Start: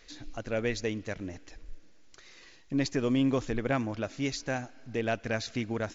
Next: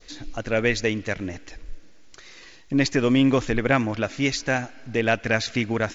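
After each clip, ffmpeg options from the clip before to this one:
-af "adynamicequalizer=threshold=0.00447:dfrequency=2100:dqfactor=0.93:tfrequency=2100:tqfactor=0.93:attack=5:release=100:ratio=0.375:range=2.5:mode=boostabove:tftype=bell,volume=7.5dB"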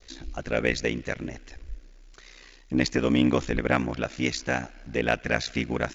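-af "aeval=exprs='val(0)*sin(2*PI*31*n/s)':c=same,aeval=exprs='0.501*(cos(1*acos(clip(val(0)/0.501,-1,1)))-cos(1*PI/2))+0.00794*(cos(7*acos(clip(val(0)/0.501,-1,1)))-cos(7*PI/2))':c=same"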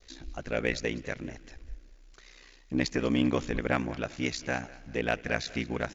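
-af "aecho=1:1:198|396|594:0.1|0.039|0.0152,volume=-4.5dB"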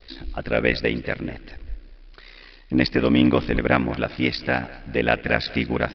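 -af "aresample=11025,aresample=44100,volume=9dB"

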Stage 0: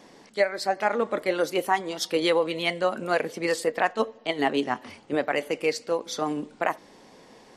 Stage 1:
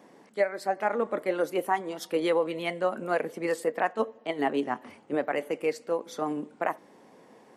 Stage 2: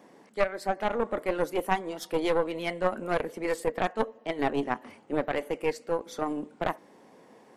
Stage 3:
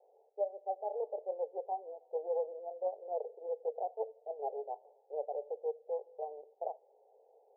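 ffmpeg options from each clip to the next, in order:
-af "highpass=140,equalizer=f=4.6k:w=0.75:g=-11,volume=-2dB"
-af "aeval=exprs='0.237*(cos(1*acos(clip(val(0)/0.237,-1,1)))-cos(1*PI/2))+0.106*(cos(2*acos(clip(val(0)/0.237,-1,1)))-cos(2*PI/2))+0.0299*(cos(3*acos(clip(val(0)/0.237,-1,1)))-cos(3*PI/2))+0.0168*(cos(5*acos(clip(val(0)/0.237,-1,1)))-cos(5*PI/2))':c=same"
-af "asuperpass=centerf=590:order=12:qfactor=1.4,volume=-7dB"

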